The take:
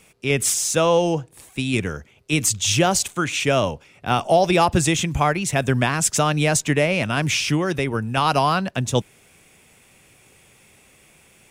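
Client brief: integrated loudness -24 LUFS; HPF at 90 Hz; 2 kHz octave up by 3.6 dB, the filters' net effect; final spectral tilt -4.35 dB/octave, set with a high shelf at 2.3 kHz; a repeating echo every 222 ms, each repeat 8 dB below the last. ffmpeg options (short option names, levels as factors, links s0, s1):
-af "highpass=90,equalizer=f=2000:t=o:g=8.5,highshelf=f=2300:g=-6.5,aecho=1:1:222|444|666|888|1110:0.398|0.159|0.0637|0.0255|0.0102,volume=0.596"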